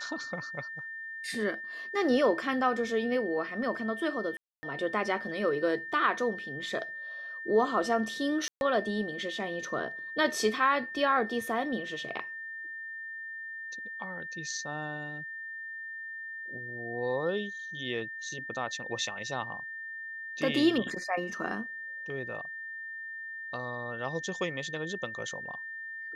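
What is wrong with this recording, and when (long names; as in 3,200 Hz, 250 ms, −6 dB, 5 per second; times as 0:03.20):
whistle 1,800 Hz −38 dBFS
0:04.37–0:04.63: drop-out 260 ms
0:08.48–0:08.61: drop-out 131 ms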